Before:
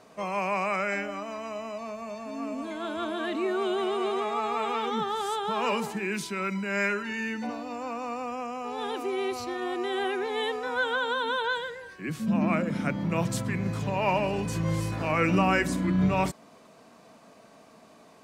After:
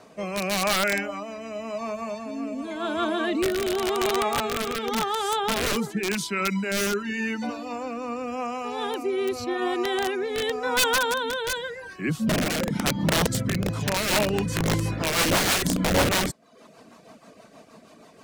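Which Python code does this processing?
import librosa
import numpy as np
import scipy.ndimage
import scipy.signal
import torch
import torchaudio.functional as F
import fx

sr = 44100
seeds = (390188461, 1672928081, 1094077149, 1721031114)

y = fx.dereverb_blind(x, sr, rt60_s=0.55)
y = (np.mod(10.0 ** (22.0 / 20.0) * y + 1.0, 2.0) - 1.0) / 10.0 ** (22.0 / 20.0)
y = fx.rotary_switch(y, sr, hz=0.9, then_hz=6.3, switch_at_s=13.58)
y = y * 10.0 ** (7.5 / 20.0)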